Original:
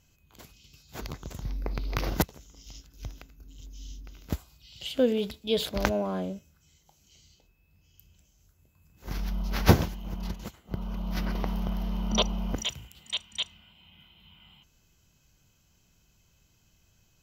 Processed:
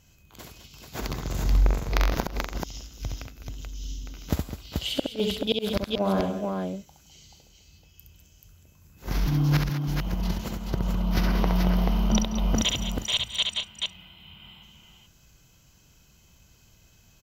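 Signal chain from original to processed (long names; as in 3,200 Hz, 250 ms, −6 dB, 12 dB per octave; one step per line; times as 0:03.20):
harmonic generator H 2 −11 dB, 7 −37 dB, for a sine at −3 dBFS
in parallel at −5.5 dB: soft clipping −14.5 dBFS, distortion −12 dB
on the sum: gate with flip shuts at −12 dBFS, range −39 dB
0:01.14–0:02.15: flutter between parallel walls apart 7.4 metres, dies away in 0.62 s
0:09.26–0:09.87: frequency shifter +99 Hz
on a send: multi-tap delay 67/164/205/214/433 ms −4.5/−18/−11.5/−19.5/−4 dB
on the sum: level +2.5 dB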